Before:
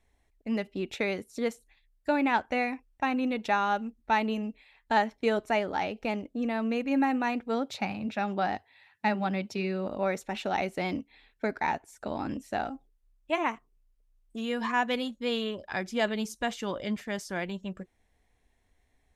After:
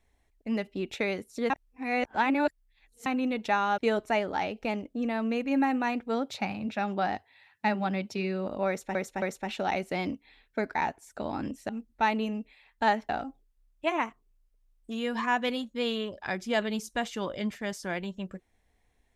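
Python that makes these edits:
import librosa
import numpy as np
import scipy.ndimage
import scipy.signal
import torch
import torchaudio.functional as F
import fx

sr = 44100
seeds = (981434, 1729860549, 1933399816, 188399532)

y = fx.edit(x, sr, fx.reverse_span(start_s=1.5, length_s=1.56),
    fx.move(start_s=3.78, length_s=1.4, to_s=12.55),
    fx.repeat(start_s=10.08, length_s=0.27, count=3), tone=tone)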